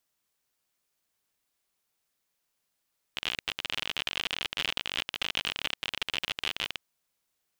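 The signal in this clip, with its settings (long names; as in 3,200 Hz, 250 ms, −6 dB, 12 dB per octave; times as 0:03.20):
Geiger counter clicks 55 per second −14 dBFS 3.62 s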